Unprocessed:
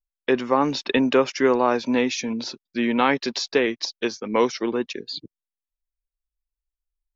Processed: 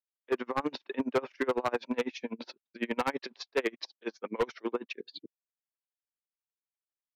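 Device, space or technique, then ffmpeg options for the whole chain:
helicopter radio: -af "highpass=320,lowpass=2700,aeval=exprs='val(0)*pow(10,-31*(0.5-0.5*cos(2*PI*12*n/s))/20)':c=same,asoftclip=type=hard:threshold=0.0794"

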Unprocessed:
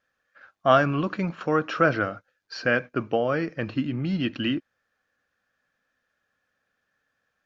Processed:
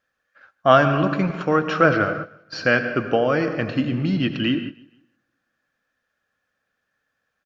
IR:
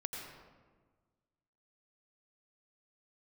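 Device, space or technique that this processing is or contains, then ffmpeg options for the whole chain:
keyed gated reverb: -filter_complex "[0:a]asplit=3[s0][s1][s2];[1:a]atrim=start_sample=2205[s3];[s1][s3]afir=irnorm=-1:irlink=0[s4];[s2]apad=whole_len=328620[s5];[s4][s5]sidechaingate=range=0.0398:threshold=0.00794:ratio=16:detection=peak,volume=0.841[s6];[s0][s6]amix=inputs=2:normalize=0,asettb=1/sr,asplit=3[s7][s8][s9];[s7]atrim=end=2.624[s10];[s8]atrim=start=2.62:end=4.1,asetpts=PTS-STARTPTS,afade=t=in:d=0.004:c=qsin,afade=t=out:st=1.476:d=0.004:c=qsin,highshelf=f=4700:g=6[s11];[s9]atrim=start=4.096[s12];[s10][s11]acrossfade=d=0.004:c1=hsin:c2=qsin[s13];[s13][s12]acrossfade=d=0.004:c1=qsin:c2=hsin,aecho=1:1:154|308|462:0.0708|0.0269|0.0102"

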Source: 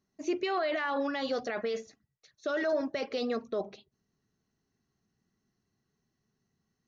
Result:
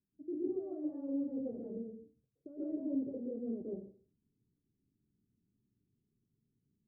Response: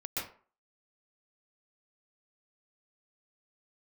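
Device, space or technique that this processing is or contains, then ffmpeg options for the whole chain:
next room: -filter_complex "[0:a]lowpass=f=360:w=0.5412,lowpass=f=360:w=1.3066[s0];[1:a]atrim=start_sample=2205[s1];[s0][s1]afir=irnorm=-1:irlink=0,volume=0.708"

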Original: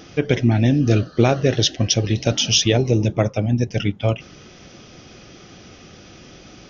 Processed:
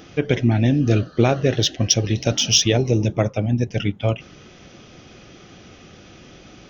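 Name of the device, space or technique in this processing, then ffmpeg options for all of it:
exciter from parts: -filter_complex "[0:a]asplit=2[s0][s1];[s1]highpass=f=4900:w=0.5412,highpass=f=4900:w=1.3066,asoftclip=type=tanh:threshold=0.0531,volume=0.562[s2];[s0][s2]amix=inputs=2:normalize=0,asettb=1/sr,asplit=3[s3][s4][s5];[s3]atrim=end=1.824[s6];[s4]atrim=start=1.82:end=3.25,asetpts=PTS-STARTPTS,afade=t=in:d=0.004:c=qsin,afade=t=out:st=1.426:d=0.004:c=qsin,equalizer=f=5600:w=4.1:g=5.5[s7];[s5]atrim=start=3.246[s8];[s6][s7]acrossfade=d=0.004:c1=hsin:c2=qsin[s9];[s9][s8]acrossfade=d=0.004:c1=qsin:c2=hsin,volume=0.891"

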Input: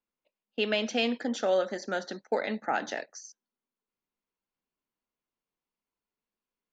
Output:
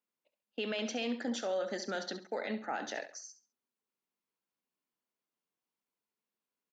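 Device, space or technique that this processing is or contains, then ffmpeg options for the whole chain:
stacked limiters: -filter_complex "[0:a]alimiter=limit=0.106:level=0:latency=1:release=136,alimiter=level_in=1.12:limit=0.0631:level=0:latency=1:release=30,volume=0.891,highpass=140,asettb=1/sr,asplit=3[s0][s1][s2];[s0]atrim=end=1.714[s3];[s1]atrim=start=1.71:end=2.17,asetpts=PTS-STARTPTS,afade=t=in:d=0.004:c=qsin,afade=t=out:st=0.456:d=0.004:c=qsin,equalizer=f=4000:w=1.1:g=4.5[s4];[s2]atrim=start=2.166[s5];[s3][s4]acrossfade=d=0.004:c1=hsin:c2=qsin[s6];[s6][s5]acrossfade=d=0.004:c1=qsin:c2=hsin,aecho=1:1:68|136|204:0.251|0.0678|0.0183,volume=0.794"

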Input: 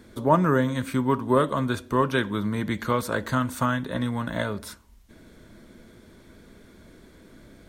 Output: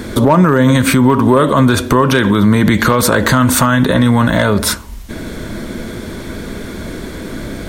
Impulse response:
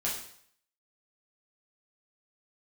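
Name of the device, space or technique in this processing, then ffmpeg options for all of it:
loud club master: -af "acompressor=threshold=0.0501:ratio=2.5,asoftclip=type=hard:threshold=0.126,alimiter=level_in=20:limit=0.891:release=50:level=0:latency=1,volume=0.891"

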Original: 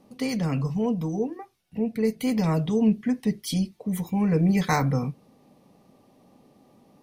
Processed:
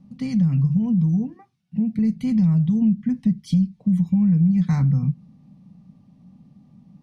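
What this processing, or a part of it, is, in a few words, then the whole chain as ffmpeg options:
jukebox: -filter_complex "[0:a]lowpass=7300,lowshelf=f=270:t=q:w=3:g=14,acompressor=threshold=0.355:ratio=5,asettb=1/sr,asplit=3[s0][s1][s2];[s0]atrim=end=1.354[s3];[s1]atrim=start=1.35:end=1.99,asetpts=PTS-STARTPTS,afade=t=in:d=0.004:c=qsin,afade=t=out:st=0.636:d=0.004:c=qsin,highpass=140[s4];[s2]atrim=start=1.986[s5];[s3][s4]acrossfade=d=0.004:c1=hsin:c2=qsin[s6];[s6][s5]acrossfade=d=0.004:c1=qsin:c2=hsin,volume=0.447"

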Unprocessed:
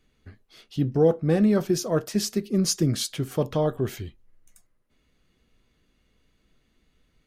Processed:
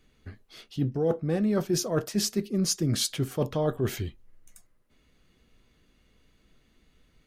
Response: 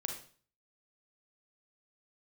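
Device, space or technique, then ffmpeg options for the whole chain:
compression on the reversed sound: -af "areverse,acompressor=threshold=0.0501:ratio=6,areverse,volume=1.41"

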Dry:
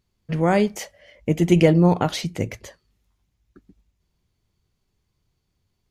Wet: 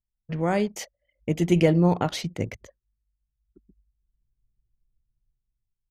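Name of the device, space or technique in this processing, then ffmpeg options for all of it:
voice memo with heavy noise removal: -filter_complex "[0:a]asettb=1/sr,asplit=3[s0][s1][s2];[s0]atrim=end=0.664[s3];[s1]atrim=start=0.66:end=1.46,asetpts=PTS-STARTPTS,afade=t=in:d=0.004:c=qsin,afade=t=out:st=0.796:d=0.004:c=qsin,equalizer=f=4600:t=o:w=1.9:g=4[s4];[s2]atrim=start=1.456[s5];[s3][s4]acrossfade=d=0.004:c1=hsin:c2=qsin[s6];[s6][s5]acrossfade=d=0.004:c1=qsin:c2=hsin,anlmdn=2.51,dynaudnorm=f=560:g=5:m=5.31,volume=0.531"

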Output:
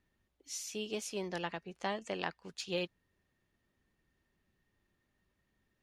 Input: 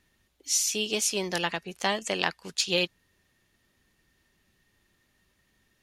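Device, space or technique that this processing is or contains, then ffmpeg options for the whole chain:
through cloth: -filter_complex "[0:a]highshelf=f=2300:g=-11,asettb=1/sr,asplit=3[s0][s1][s2];[s0]atrim=end=1.284[s3];[s1]atrim=start=1.28:end=2.5,asetpts=PTS-STARTPTS,afade=t=in:d=0.004:c=qsin,afade=t=out:st=1.216:d=0.004:c=qsin,lowpass=8600[s4];[s2]atrim=start=2.496[s5];[s3][s4]acrossfade=d=0.004:c1=hsin:c2=qsin[s6];[s6][s5]acrossfade=d=0.004:c1=qsin:c2=hsin,volume=0.447"

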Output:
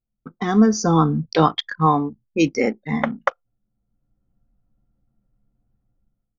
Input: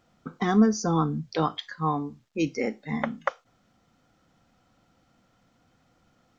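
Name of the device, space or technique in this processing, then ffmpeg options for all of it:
voice memo with heavy noise removal: -filter_complex "[0:a]asettb=1/sr,asplit=3[s0][s1][s2];[s0]atrim=end=1.864[s3];[s1]atrim=start=1.86:end=2.55,asetpts=PTS-STARTPTS,afade=t=in:d=0.004:c=qsin,afade=t=out:st=0.686:d=0.004:c=qsin,lowshelf=f=220:g=-4[s4];[s2]atrim=start=2.546[s5];[s3][s4]acrossfade=d=0.004:c1=hsin:c2=qsin[s6];[s6][s5]acrossfade=d=0.004:c1=qsin:c2=hsin,anlmdn=0.251,dynaudnorm=f=240:g=5:m=5.62,volume=0.891"

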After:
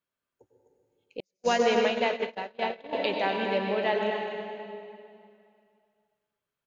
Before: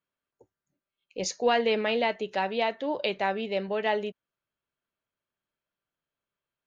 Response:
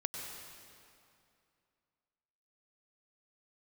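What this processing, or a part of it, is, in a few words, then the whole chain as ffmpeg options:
cave: -filter_complex "[0:a]aecho=1:1:251:0.299[s0];[1:a]atrim=start_sample=2205[s1];[s0][s1]afir=irnorm=-1:irlink=0,asettb=1/sr,asplit=3[s2][s3][s4];[s2]atrim=end=1.204[s5];[s3]atrim=start=1.2:end=2.93,asetpts=PTS-STARTPTS,afade=t=in:d=0.004:c=qsin,afade=t=out:st=1.726:d=0.004:c=qsin,agate=range=0.00316:threshold=0.0631:ratio=16:detection=peak[s6];[s4]atrim=start=2.926[s7];[s5][s6]acrossfade=d=0.004:c1=hsin:c2=qsin[s8];[s8][s7]acrossfade=d=0.004:c1=qsin:c2=hsin"

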